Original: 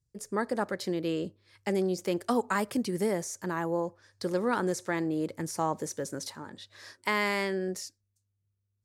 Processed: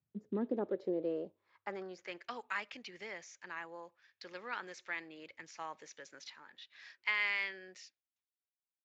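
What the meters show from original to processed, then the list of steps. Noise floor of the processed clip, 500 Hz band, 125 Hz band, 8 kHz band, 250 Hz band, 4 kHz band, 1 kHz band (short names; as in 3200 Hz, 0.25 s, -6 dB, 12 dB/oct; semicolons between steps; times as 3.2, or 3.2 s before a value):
under -85 dBFS, -11.0 dB, -18.0 dB, -17.5 dB, -12.5 dB, -6.5 dB, -12.5 dB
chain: band-pass sweep 220 Hz -> 2500 Hz, 0.2–2.33; gain +1.5 dB; Speex 34 kbps 16000 Hz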